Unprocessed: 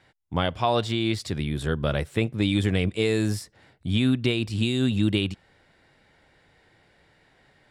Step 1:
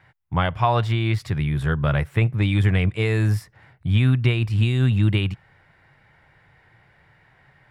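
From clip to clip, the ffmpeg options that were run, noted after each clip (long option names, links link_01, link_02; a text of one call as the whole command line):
ffmpeg -i in.wav -af "equalizer=frequency=125:width_type=o:width=1:gain=9,equalizer=frequency=250:width_type=o:width=1:gain=-7,equalizer=frequency=500:width_type=o:width=1:gain=-4,equalizer=frequency=1000:width_type=o:width=1:gain=4,equalizer=frequency=2000:width_type=o:width=1:gain=4,equalizer=frequency=4000:width_type=o:width=1:gain=-7,equalizer=frequency=8000:width_type=o:width=1:gain=-9,volume=2.5dB" out.wav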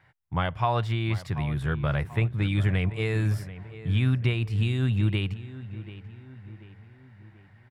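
ffmpeg -i in.wav -filter_complex "[0:a]asplit=2[link_01][link_02];[link_02]adelay=737,lowpass=frequency=2600:poles=1,volume=-14.5dB,asplit=2[link_03][link_04];[link_04]adelay=737,lowpass=frequency=2600:poles=1,volume=0.49,asplit=2[link_05][link_06];[link_06]adelay=737,lowpass=frequency=2600:poles=1,volume=0.49,asplit=2[link_07][link_08];[link_08]adelay=737,lowpass=frequency=2600:poles=1,volume=0.49,asplit=2[link_09][link_10];[link_10]adelay=737,lowpass=frequency=2600:poles=1,volume=0.49[link_11];[link_01][link_03][link_05][link_07][link_09][link_11]amix=inputs=6:normalize=0,volume=-5.5dB" out.wav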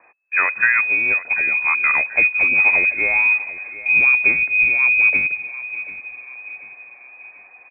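ffmpeg -i in.wav -af "lowpass=frequency=2200:width_type=q:width=0.5098,lowpass=frequency=2200:width_type=q:width=0.6013,lowpass=frequency=2200:width_type=q:width=0.9,lowpass=frequency=2200:width_type=q:width=2.563,afreqshift=-2600,volume=8.5dB" out.wav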